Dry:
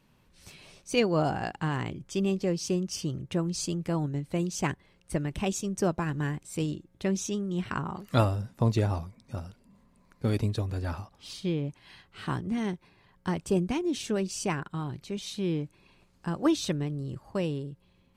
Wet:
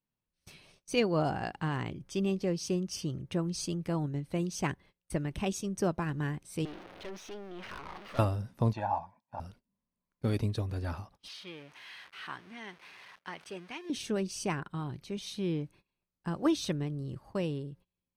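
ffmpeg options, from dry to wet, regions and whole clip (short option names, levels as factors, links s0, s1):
-filter_complex "[0:a]asettb=1/sr,asplit=3[s0][s1][s2];[s0]atrim=end=6.654[s3];[s1]atrim=start=6.65:end=8.19,asetpts=PTS-STARTPTS,afade=t=in:d=0.004:c=qsin,afade=t=out:st=1.536:d=0.004:c=qsin,aeval=exprs='val(0)+0.5*0.0266*sgn(val(0))':c=same,acrossover=split=320 3900:gain=0.126 1 0.0794[s4][s5][s6];[s4][s5][s6]amix=inputs=3:normalize=0,aeval=exprs='(tanh(56.2*val(0)+0.65)-tanh(0.65))/56.2':c=same[s7];[s2]atrim=start=8.186[s8];[s3][s7]acrossfade=d=0.004:c1=hsin:c2=qsin[s9];[s9][s8]acrossfade=d=0.004:c1=qsin:c2=hsin,asettb=1/sr,asplit=3[s10][s11][s12];[s10]atrim=end=8.734[s13];[s11]atrim=start=8.73:end=9.4,asetpts=PTS-STARTPTS,afade=t=in:d=0.004:c=qsin,afade=t=out:st=0.666:d=0.004:c=qsin,bandpass=f=920:t=q:w=0.95,equalizer=f=860:t=o:w=0.45:g=9.5,aecho=1:1:1.2:0.87,atrim=end_sample=29547[s14];[s12]atrim=start=9.396[s15];[s13][s14]acrossfade=d=0.004:c1=hsin:c2=qsin[s16];[s16][s15]acrossfade=d=0.004:c1=qsin:c2=hsin,asettb=1/sr,asplit=3[s17][s18][s19];[s17]atrim=end=11.284[s20];[s18]atrim=start=11.28:end=13.9,asetpts=PTS-STARTPTS,afade=t=in:d=0.004:c=qsin,afade=t=out:st=2.616:d=0.004:c=qsin,aeval=exprs='val(0)+0.5*0.01*sgn(val(0))':c=same,bandpass=f=2100:t=q:w=0.89[s21];[s19]atrim=start=13.896[s22];[s20][s21]acrossfade=d=0.004:c1=hsin:c2=qsin[s23];[s23][s22]acrossfade=d=0.004:c1=qsin:c2=hsin,agate=range=0.0631:threshold=0.00282:ratio=16:detection=peak,bandreject=f=7300:w=6,volume=0.708"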